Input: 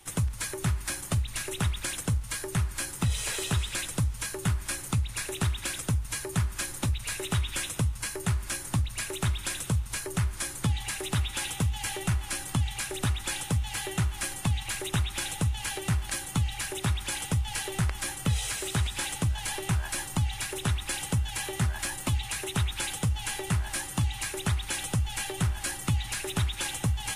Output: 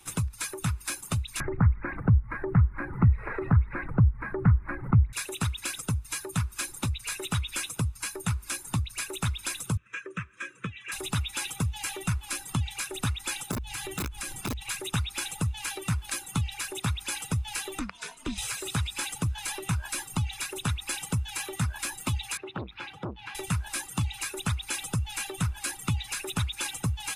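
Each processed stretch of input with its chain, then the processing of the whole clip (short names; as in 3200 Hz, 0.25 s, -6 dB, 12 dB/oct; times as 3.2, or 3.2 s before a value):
1.4–5.13 elliptic low-pass 2000 Hz + low shelf 300 Hz +11 dB + upward compressor, threshold -20 dBFS
9.77–10.92 speaker cabinet 190–5700 Hz, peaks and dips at 260 Hz -5 dB, 510 Hz +9 dB, 740 Hz -6 dB, 1500 Hz +8 dB, 2600 Hz +4 dB, 4600 Hz -8 dB + fixed phaser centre 1900 Hz, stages 4 + notch comb 720 Hz
13.51–14.61 low shelf 210 Hz +7.5 dB + wrapped overs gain 15 dB + compressor, threshold -29 dBFS
17.79–18.38 BPF 110–6800 Hz + ring modulator 130 Hz
22.37–23.35 HPF 67 Hz + air absorption 330 m + core saturation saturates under 720 Hz
whole clip: reverb removal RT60 0.81 s; low shelf 120 Hz -6.5 dB; comb 0.8 ms, depth 36%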